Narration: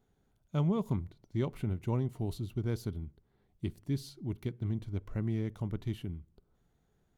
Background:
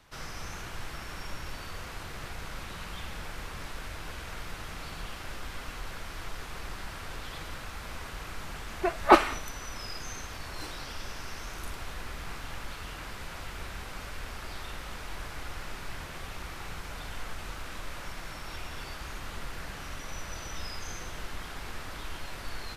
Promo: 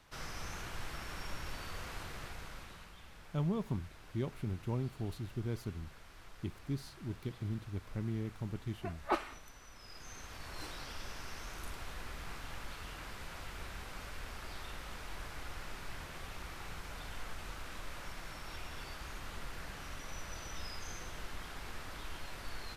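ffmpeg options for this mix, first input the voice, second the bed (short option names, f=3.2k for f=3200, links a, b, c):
-filter_complex "[0:a]adelay=2800,volume=-4.5dB[a];[1:a]volume=6.5dB,afade=t=out:st=1.98:d=0.96:silence=0.251189,afade=t=in:st=9.8:d=0.79:silence=0.316228[b];[a][b]amix=inputs=2:normalize=0"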